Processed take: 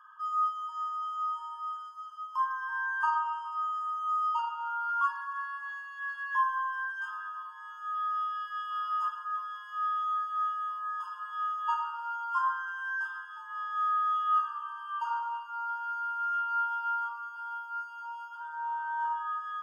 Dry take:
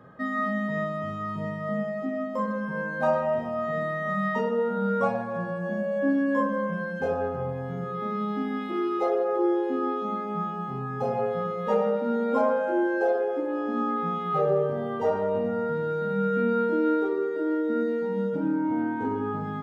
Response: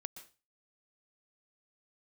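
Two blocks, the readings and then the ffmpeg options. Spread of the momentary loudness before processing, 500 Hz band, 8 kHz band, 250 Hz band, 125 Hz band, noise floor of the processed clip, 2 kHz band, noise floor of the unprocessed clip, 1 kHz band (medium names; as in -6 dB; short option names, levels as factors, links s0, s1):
7 LU, under -40 dB, no reading, under -40 dB, under -40 dB, -45 dBFS, -0.5 dB, -33 dBFS, +1.5 dB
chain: -filter_complex "[0:a]acrossover=split=220|1200[s0][s1][s2];[s1]crystalizer=i=9.5:c=0[s3];[s0][s3][s2]amix=inputs=3:normalize=0,afftfilt=real='re*eq(mod(floor(b*sr/1024/880),2),1)':imag='im*eq(mod(floor(b*sr/1024/880),2),1)':win_size=1024:overlap=0.75"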